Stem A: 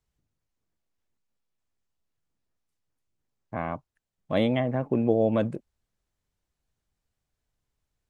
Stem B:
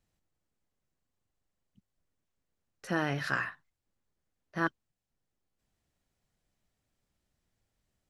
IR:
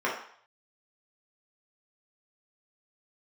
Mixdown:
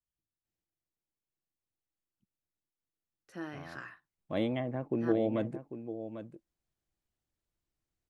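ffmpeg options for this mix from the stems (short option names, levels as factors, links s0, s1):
-filter_complex "[0:a]volume=0.355,afade=t=in:st=3.77:d=0.37:silence=0.334965,asplit=2[s0][s1];[s1]volume=0.282[s2];[1:a]highpass=60,adelay=450,volume=0.2[s3];[s2]aecho=0:1:796:1[s4];[s0][s3][s4]amix=inputs=3:normalize=0,equalizer=f=330:t=o:w=0.25:g=8"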